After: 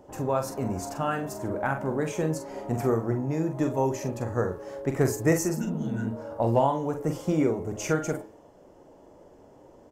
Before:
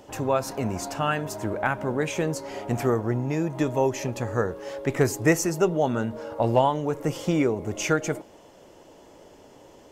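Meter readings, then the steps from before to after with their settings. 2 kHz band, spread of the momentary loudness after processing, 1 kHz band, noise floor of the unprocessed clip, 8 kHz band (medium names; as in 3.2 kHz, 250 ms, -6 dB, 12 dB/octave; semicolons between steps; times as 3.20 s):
-5.5 dB, 7 LU, -3.0 dB, -51 dBFS, -3.5 dB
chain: de-hum 108.1 Hz, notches 40; spectral replace 5.60–6.04 s, 200–1400 Hz after; peaking EQ 3 kHz -8.5 dB 1.6 oct; doubling 44 ms -7 dB; tape noise reduction on one side only decoder only; trim -1.5 dB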